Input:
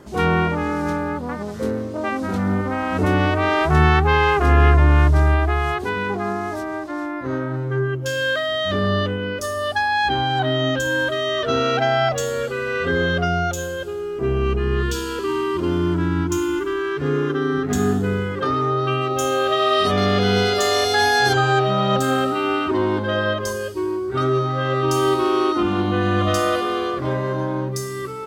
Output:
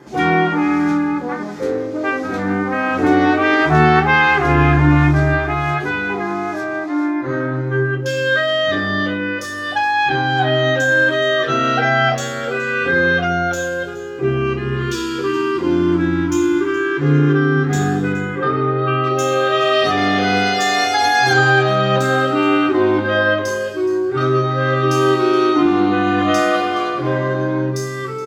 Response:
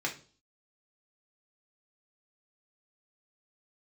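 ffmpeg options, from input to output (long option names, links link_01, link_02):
-filter_complex "[0:a]asettb=1/sr,asplit=3[link_01][link_02][link_03];[link_01]atrim=end=18.124[link_04];[link_02]atrim=start=18.12:end=19.04,asetpts=PTS-STARTPTS,afade=type=in:duration=0.004:curve=qsin,afade=type=out:start_time=0.916:duration=0.004:curve=qsin,lowpass=2700[link_05];[link_03]atrim=start=19.036[link_06];[link_04][link_05]acrossfade=duration=0.004:curve1=hsin:curve2=qsin[link_07];[link_07][link_06]acrossfade=duration=0.004:curve1=qsin:curve2=hsin,aecho=1:1:421:0.141[link_08];[1:a]atrim=start_sample=2205,atrim=end_sample=6174[link_09];[link_08][link_09]afir=irnorm=-1:irlink=0,volume=-1dB"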